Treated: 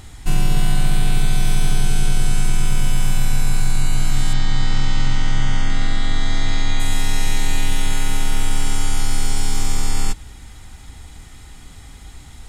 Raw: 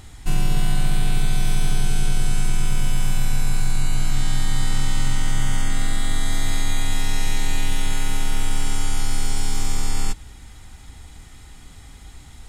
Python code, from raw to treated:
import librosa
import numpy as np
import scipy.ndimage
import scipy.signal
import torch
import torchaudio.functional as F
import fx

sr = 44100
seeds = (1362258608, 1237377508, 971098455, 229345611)

y = fx.lowpass(x, sr, hz=6100.0, slope=24, at=(4.33, 6.8))
y = y * librosa.db_to_amplitude(3.0)